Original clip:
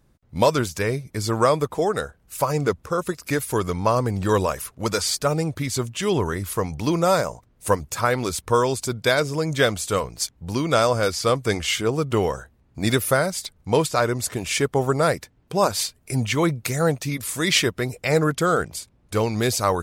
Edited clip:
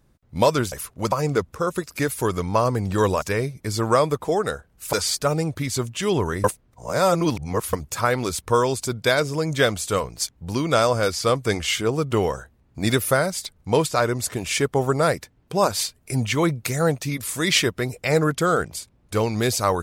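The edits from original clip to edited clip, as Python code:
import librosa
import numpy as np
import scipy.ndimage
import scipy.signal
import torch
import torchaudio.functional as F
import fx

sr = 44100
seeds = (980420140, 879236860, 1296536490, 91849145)

y = fx.edit(x, sr, fx.swap(start_s=0.72, length_s=1.71, other_s=4.53, other_length_s=0.4),
    fx.reverse_span(start_s=6.44, length_s=1.29), tone=tone)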